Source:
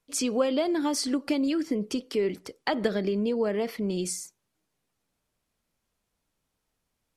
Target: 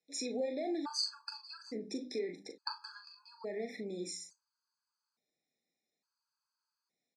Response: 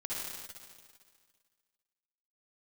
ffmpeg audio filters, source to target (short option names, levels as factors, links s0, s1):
-filter_complex "[0:a]bandreject=f=50:t=h:w=6,bandreject=f=100:t=h:w=6,bandreject=f=150:t=h:w=6,bandreject=f=200:t=h:w=6,bandreject=f=250:t=h:w=6,bandreject=f=300:t=h:w=6,acompressor=threshold=0.0447:ratio=6,flanger=delay=6:depth=5.5:regen=76:speed=1.3:shape=sinusoidal,asuperstop=centerf=3000:order=12:qfactor=3,highpass=f=180:w=0.5412,highpass=f=180:w=1.3066,equalizer=f=190:t=q:w=4:g=-4,equalizer=f=630:t=q:w=4:g=-3,equalizer=f=3200:t=q:w=4:g=7,equalizer=f=4700:t=q:w=4:g=9,lowpass=f=8100:w=0.5412,lowpass=f=8100:w=1.3066,asplit=2[s0][s1];[s1]adelay=40,volume=0.422[s2];[s0][s2]amix=inputs=2:normalize=0,afftfilt=real='re*gt(sin(2*PI*0.58*pts/sr)*(1-2*mod(floor(b*sr/1024/840),2)),0)':imag='im*gt(sin(2*PI*0.58*pts/sr)*(1-2*mod(floor(b*sr/1024/840),2)),0)':win_size=1024:overlap=0.75,volume=0.794"